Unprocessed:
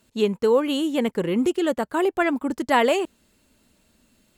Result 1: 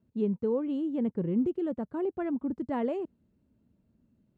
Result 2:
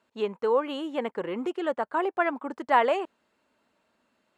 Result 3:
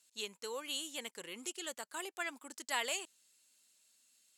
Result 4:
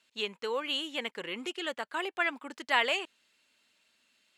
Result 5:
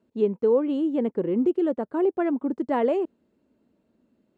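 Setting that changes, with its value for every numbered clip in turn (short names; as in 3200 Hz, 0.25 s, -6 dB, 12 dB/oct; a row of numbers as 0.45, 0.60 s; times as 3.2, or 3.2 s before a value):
band-pass, frequency: 130, 1000, 7600, 2800, 340 Hz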